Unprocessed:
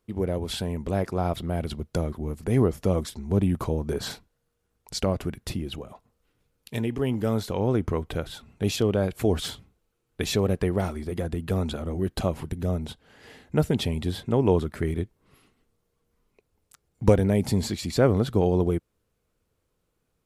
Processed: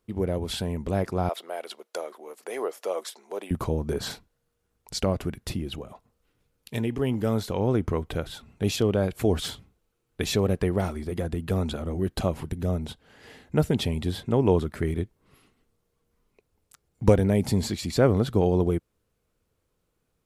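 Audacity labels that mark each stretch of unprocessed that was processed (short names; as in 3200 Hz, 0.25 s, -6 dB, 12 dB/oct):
1.290000	3.510000	HPF 470 Hz 24 dB/oct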